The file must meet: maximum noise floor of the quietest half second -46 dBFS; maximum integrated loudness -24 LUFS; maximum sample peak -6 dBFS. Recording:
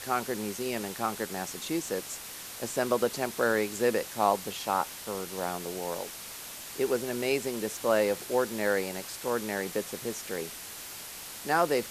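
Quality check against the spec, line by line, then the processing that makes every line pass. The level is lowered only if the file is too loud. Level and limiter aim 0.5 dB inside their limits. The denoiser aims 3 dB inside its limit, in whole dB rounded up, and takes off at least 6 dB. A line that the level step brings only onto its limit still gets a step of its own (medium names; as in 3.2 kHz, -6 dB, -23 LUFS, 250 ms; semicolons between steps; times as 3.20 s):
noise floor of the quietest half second -43 dBFS: fail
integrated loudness -31.0 LUFS: pass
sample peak -11.0 dBFS: pass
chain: noise reduction 6 dB, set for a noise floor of -43 dBFS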